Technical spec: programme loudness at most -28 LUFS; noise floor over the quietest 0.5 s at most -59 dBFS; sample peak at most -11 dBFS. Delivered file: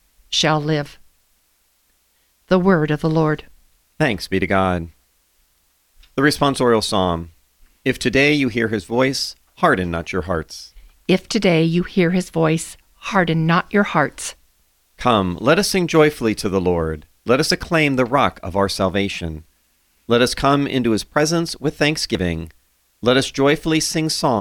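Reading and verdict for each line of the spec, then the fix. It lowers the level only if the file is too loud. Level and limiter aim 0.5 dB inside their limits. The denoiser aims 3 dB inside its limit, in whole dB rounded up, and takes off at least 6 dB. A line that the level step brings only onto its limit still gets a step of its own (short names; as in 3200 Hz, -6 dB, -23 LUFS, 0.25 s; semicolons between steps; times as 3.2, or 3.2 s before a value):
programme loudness -18.5 LUFS: fail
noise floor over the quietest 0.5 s -62 dBFS: OK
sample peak -2.0 dBFS: fail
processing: gain -10 dB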